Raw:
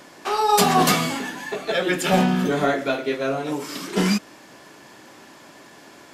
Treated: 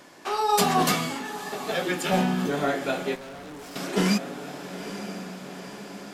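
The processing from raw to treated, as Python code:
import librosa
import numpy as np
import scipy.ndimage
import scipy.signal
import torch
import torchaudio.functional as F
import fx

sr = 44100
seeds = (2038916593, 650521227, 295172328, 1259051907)

y = fx.echo_diffused(x, sr, ms=908, feedback_pct=55, wet_db=-12)
y = fx.rider(y, sr, range_db=5, speed_s=2.0)
y = fx.tube_stage(y, sr, drive_db=33.0, bias=0.8, at=(3.15, 3.76))
y = y * 10.0 ** (-6.0 / 20.0)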